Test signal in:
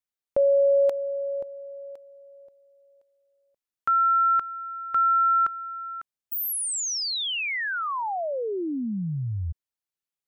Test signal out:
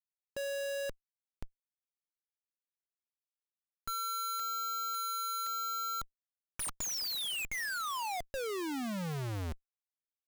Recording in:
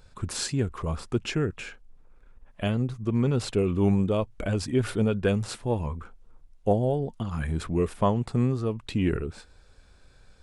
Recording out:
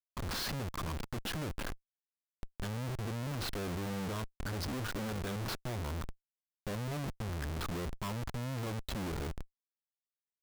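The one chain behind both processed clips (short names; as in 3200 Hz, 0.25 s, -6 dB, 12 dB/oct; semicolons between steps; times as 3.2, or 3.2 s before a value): steep low-pass 9700 Hz 96 dB/oct; fixed phaser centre 2300 Hz, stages 6; Schmitt trigger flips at -41 dBFS; gain -7 dB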